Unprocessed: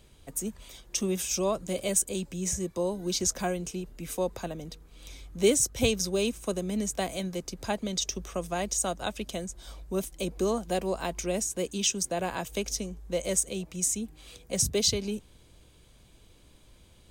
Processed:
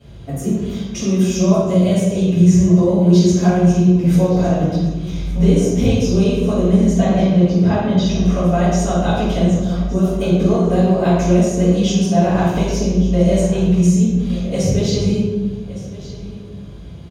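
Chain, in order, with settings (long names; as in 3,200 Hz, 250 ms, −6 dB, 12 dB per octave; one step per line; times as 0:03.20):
0:06.97–0:08.20: low-pass filter 3,900 Hz 12 dB per octave
downward compressor, threshold −31 dBFS, peak gain reduction 13 dB
single-tap delay 1,165 ms −16.5 dB
convolution reverb RT60 1.2 s, pre-delay 3 ms, DRR −18 dB
level −7 dB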